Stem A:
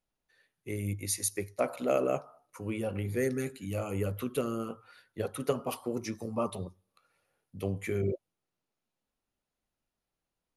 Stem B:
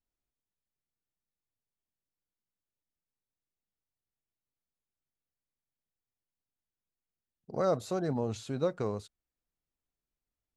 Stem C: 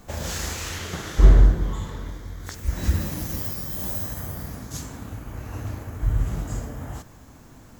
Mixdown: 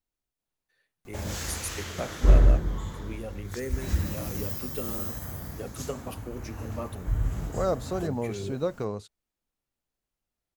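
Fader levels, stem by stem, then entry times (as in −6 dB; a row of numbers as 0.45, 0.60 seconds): −5.0, +1.5, −4.5 decibels; 0.40, 0.00, 1.05 seconds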